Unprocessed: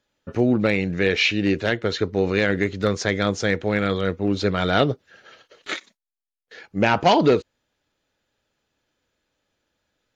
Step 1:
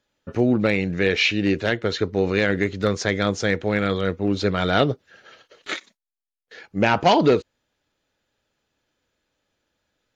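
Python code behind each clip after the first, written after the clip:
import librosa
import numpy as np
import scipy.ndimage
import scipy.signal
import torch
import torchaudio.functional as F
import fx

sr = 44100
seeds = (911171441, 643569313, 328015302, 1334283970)

y = x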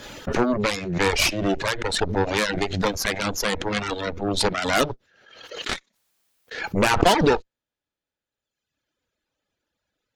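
y = fx.cheby_harmonics(x, sr, harmonics=(8,), levels_db=(-11,), full_scale_db=-4.0)
y = fx.dereverb_blind(y, sr, rt60_s=1.3)
y = fx.pre_swell(y, sr, db_per_s=61.0)
y = F.gain(torch.from_numpy(y), -3.0).numpy()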